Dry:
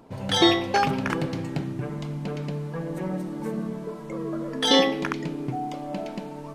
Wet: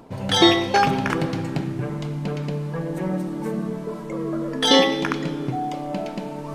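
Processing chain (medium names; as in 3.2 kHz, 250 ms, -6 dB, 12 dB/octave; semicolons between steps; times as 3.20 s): reverse; upward compressor, threshold -31 dBFS; reverse; plate-style reverb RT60 2.2 s, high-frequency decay 0.8×, DRR 12 dB; trim +3.5 dB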